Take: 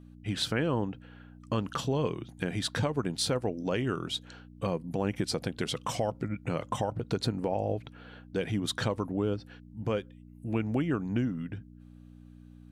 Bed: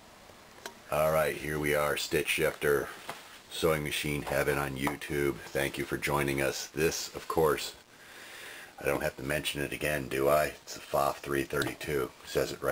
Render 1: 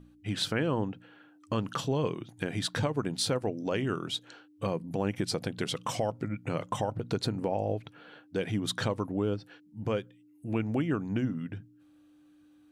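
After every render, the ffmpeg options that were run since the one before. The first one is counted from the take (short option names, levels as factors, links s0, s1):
-af "bandreject=f=60:t=h:w=4,bandreject=f=120:t=h:w=4,bandreject=f=180:t=h:w=4,bandreject=f=240:t=h:w=4"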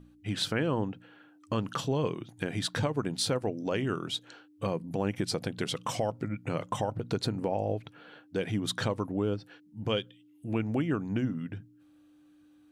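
-filter_complex "[0:a]asettb=1/sr,asplit=3[s0][s1][s2];[s0]atrim=end=9.894[s3];[s1]atrim=start=9.89:end=10.46,asetpts=PTS-STARTPTS,afade=t=in:d=0.004:c=qsin,afade=t=out:st=0.566:d=0.004:c=qsin,equalizer=f=3200:w=2.8:g=14.5[s4];[s2]atrim=start=10.456[s5];[s3][s4]acrossfade=d=0.004:c1=hsin:c2=qsin[s6];[s6][s5]acrossfade=d=0.004:c1=qsin:c2=hsin"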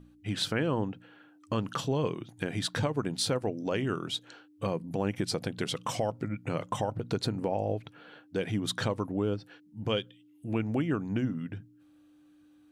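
-af anull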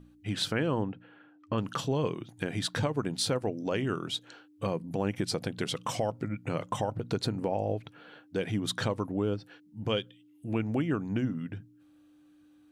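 -filter_complex "[0:a]asettb=1/sr,asplit=3[s0][s1][s2];[s0]atrim=end=0.834[s3];[s1]atrim=start=0.83:end=1.58,asetpts=PTS-STARTPTS,afade=t=in:d=0.004:c=qsin,afade=t=out:st=0.746:d=0.004:c=qsin,lowpass=2900[s4];[s2]atrim=start=1.576[s5];[s3][s4]acrossfade=d=0.004:c1=hsin:c2=qsin[s6];[s6][s5]acrossfade=d=0.004:c1=qsin:c2=hsin"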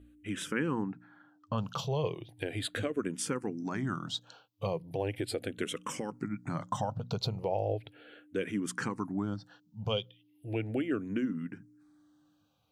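-filter_complex "[0:a]asplit=2[s0][s1];[s1]afreqshift=-0.37[s2];[s0][s2]amix=inputs=2:normalize=1"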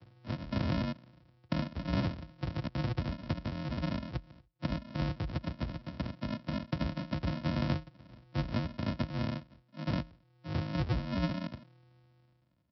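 -af "aresample=11025,acrusher=samples=29:mix=1:aa=0.000001,aresample=44100,afreqshift=45"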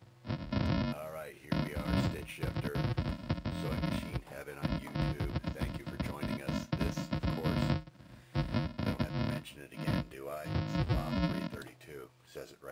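-filter_complex "[1:a]volume=0.15[s0];[0:a][s0]amix=inputs=2:normalize=0"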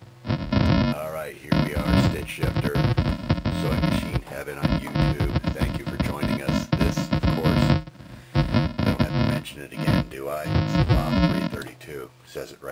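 -af "volume=3.98"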